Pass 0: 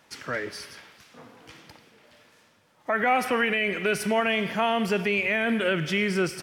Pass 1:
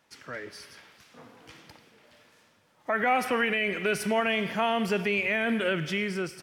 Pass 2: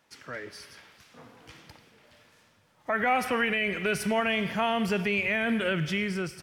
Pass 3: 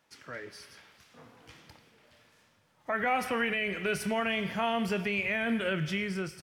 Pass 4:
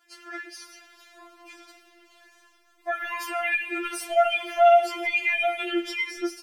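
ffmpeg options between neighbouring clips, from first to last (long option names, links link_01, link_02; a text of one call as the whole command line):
ffmpeg -i in.wav -af "dynaudnorm=framelen=310:gausssize=5:maxgain=6.5dB,volume=-8.5dB" out.wav
ffmpeg -i in.wav -af "asubboost=boost=2.5:cutoff=170" out.wav
ffmpeg -i in.wav -filter_complex "[0:a]asplit=2[link_01][link_02];[link_02]adelay=26,volume=-13dB[link_03];[link_01][link_03]amix=inputs=2:normalize=0,volume=-3.5dB" out.wav
ffmpeg -i in.wav -af "afftfilt=real='re*4*eq(mod(b,16),0)':imag='im*4*eq(mod(b,16),0)':win_size=2048:overlap=0.75,volume=8.5dB" out.wav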